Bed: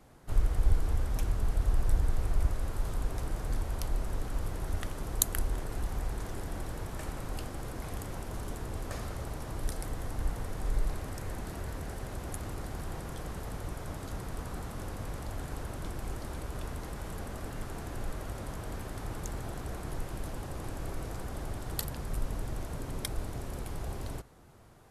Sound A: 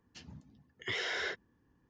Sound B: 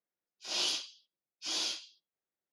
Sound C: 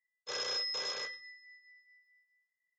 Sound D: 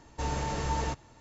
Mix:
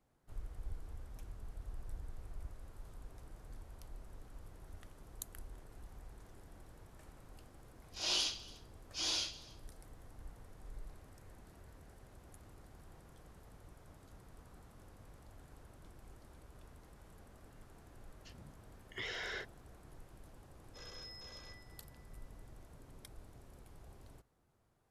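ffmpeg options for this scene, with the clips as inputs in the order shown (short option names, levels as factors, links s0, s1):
-filter_complex "[0:a]volume=0.112[s0];[2:a]aecho=1:1:292:0.075,atrim=end=2.52,asetpts=PTS-STARTPTS,volume=0.794,afade=t=in:d=0.004:c=hsin,afade=t=out:st=2.516:d=0.004:c=hsin,adelay=7520[s1];[1:a]atrim=end=1.89,asetpts=PTS-STARTPTS,volume=0.473,afade=t=in:d=0.004:c=hsin,afade=t=out:st=1.886:d=0.004:c=hsin,adelay=18100[s2];[3:a]atrim=end=2.78,asetpts=PTS-STARTPTS,volume=0.15,afade=t=in:d=0.004:c=hsin,afade=t=out:st=2.776:d=0.004:c=hsin,adelay=20470[s3];[s0][s1][s2][s3]amix=inputs=4:normalize=0"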